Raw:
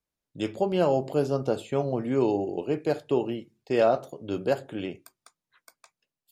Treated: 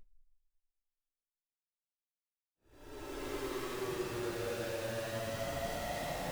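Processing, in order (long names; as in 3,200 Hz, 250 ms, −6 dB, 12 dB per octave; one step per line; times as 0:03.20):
high-pass filter 110 Hz 24 dB per octave
low-shelf EQ 150 Hz −9.5 dB
downward compressor 20 to 1, threshold −27 dBFS, peak gain reduction 10.5 dB
phase shifter 0.85 Hz, delay 1.7 ms, feedback 49%
comparator with hysteresis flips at −37 dBFS
extreme stretch with random phases 14×, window 0.10 s, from 0:03.47
level −4 dB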